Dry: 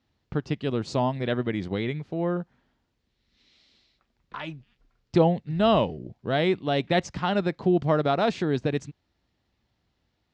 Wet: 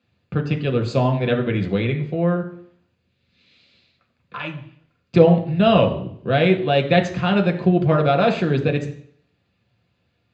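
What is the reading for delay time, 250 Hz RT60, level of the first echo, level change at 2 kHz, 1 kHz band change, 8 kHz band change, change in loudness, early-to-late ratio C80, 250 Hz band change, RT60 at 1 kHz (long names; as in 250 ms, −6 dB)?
no echo audible, 0.65 s, no echo audible, +7.0 dB, +4.5 dB, can't be measured, +6.5 dB, 14.5 dB, +6.5 dB, 0.60 s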